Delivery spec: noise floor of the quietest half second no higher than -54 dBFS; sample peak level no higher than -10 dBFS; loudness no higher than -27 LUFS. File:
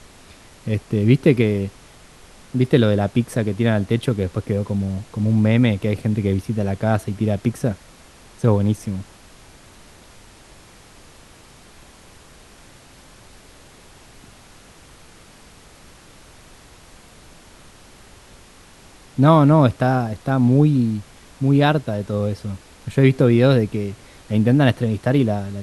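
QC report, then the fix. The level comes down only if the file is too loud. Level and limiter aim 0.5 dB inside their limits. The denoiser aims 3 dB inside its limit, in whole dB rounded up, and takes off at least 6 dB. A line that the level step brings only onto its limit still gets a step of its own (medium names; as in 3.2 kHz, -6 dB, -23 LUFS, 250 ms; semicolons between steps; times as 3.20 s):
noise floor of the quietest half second -46 dBFS: fail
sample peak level -1.5 dBFS: fail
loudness -19.0 LUFS: fail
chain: trim -8.5 dB; peak limiter -10.5 dBFS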